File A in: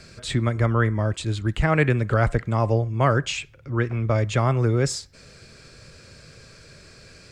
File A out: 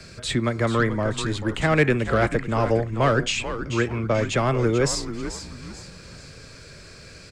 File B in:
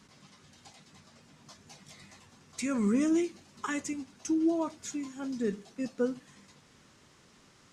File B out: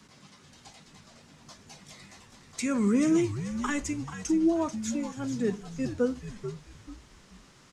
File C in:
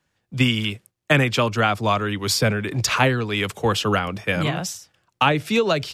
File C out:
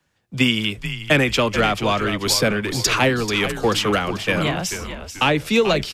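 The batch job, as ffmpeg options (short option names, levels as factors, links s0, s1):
-filter_complex "[0:a]acrossover=split=160|620|1800[s0][s1][s2][s3];[s0]acompressor=threshold=0.0141:ratio=6[s4];[s2]asoftclip=type=tanh:threshold=0.0562[s5];[s4][s1][s5][s3]amix=inputs=4:normalize=0,asplit=5[s6][s7][s8][s9][s10];[s7]adelay=437,afreqshift=-100,volume=0.316[s11];[s8]adelay=874,afreqshift=-200,volume=0.117[s12];[s9]adelay=1311,afreqshift=-300,volume=0.0432[s13];[s10]adelay=1748,afreqshift=-400,volume=0.016[s14];[s6][s11][s12][s13][s14]amix=inputs=5:normalize=0,volume=1.41"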